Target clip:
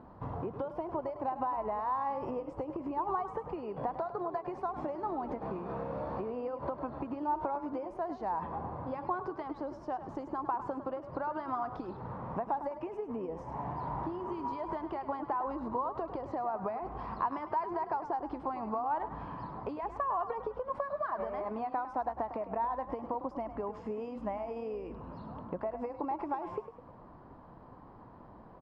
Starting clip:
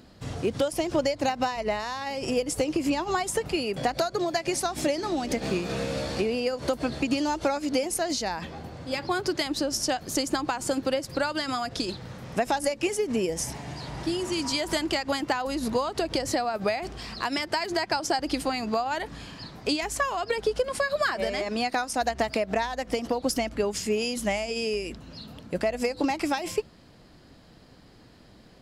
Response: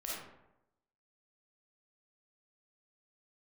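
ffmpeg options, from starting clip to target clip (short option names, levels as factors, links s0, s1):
-filter_complex "[0:a]acompressor=threshold=0.0178:ratio=6,lowpass=f=1000:t=q:w=4.7,asplit=6[s0][s1][s2][s3][s4][s5];[s1]adelay=103,afreqshift=34,volume=0.266[s6];[s2]adelay=206,afreqshift=68,volume=0.124[s7];[s3]adelay=309,afreqshift=102,volume=0.0589[s8];[s4]adelay=412,afreqshift=136,volume=0.0275[s9];[s5]adelay=515,afreqshift=170,volume=0.013[s10];[s0][s6][s7][s8][s9][s10]amix=inputs=6:normalize=0,volume=0.794"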